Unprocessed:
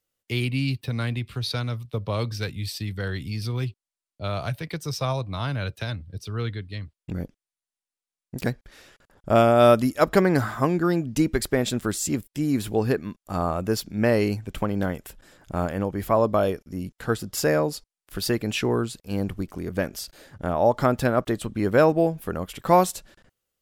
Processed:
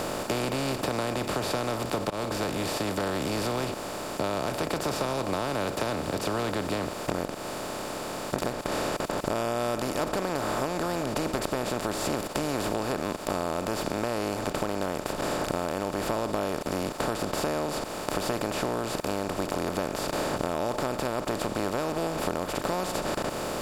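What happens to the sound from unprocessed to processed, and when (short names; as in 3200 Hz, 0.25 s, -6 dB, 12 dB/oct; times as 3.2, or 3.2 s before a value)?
2.1–4.53 fade in
whole clip: per-bin compression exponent 0.2; compressor 5:1, threshold -17 dBFS; gain -8.5 dB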